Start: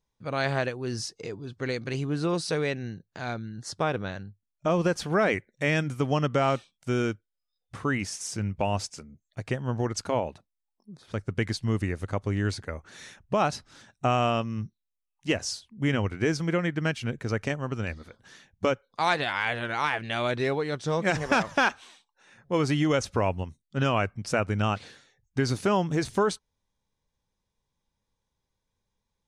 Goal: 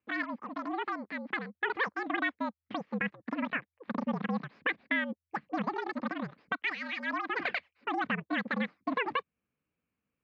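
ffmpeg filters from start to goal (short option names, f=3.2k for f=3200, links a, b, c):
-filter_complex "[0:a]asetrate=126126,aresample=44100,afreqshift=-84,equalizer=f=640:t=o:w=3:g=-11.5,asplit=2[a][b];[b]acompressor=threshold=-38dB:ratio=6,volume=-1.5dB[c];[a][c]amix=inputs=2:normalize=0,highpass=230,equalizer=f=370:t=q:w=4:g=-8,equalizer=f=630:t=q:w=4:g=-4,equalizer=f=920:t=q:w=4:g=-3,equalizer=f=1.4k:t=q:w=4:g=-8,lowpass=f=2k:w=0.5412,lowpass=f=2k:w=1.3066,volume=4.5dB"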